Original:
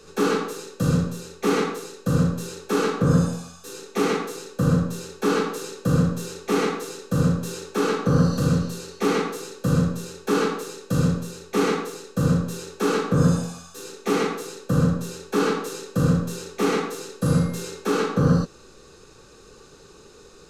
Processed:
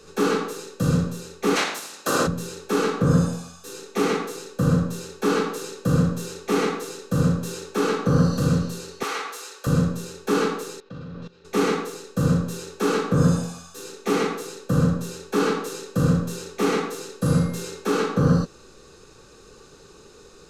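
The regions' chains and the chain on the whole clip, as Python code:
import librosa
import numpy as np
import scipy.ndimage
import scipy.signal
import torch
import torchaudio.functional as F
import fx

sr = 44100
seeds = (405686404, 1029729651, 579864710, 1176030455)

y = fx.spec_clip(x, sr, under_db=22, at=(1.55, 2.26), fade=0.02)
y = fx.highpass(y, sr, hz=250.0, slope=12, at=(1.55, 2.26), fade=0.02)
y = fx.chain(y, sr, fx.highpass(hz=880.0, slope=12),
    fx.band_squash(depth_pct=40), at=(9.03, 9.67))
y = fx.chain(y, sr, fx.lowpass(hz=4100.0, slope=24),
    fx.low_shelf(hz=470.0, db=-3.0),
    fx.level_steps(step_db=18), at=(10.8, 11.45))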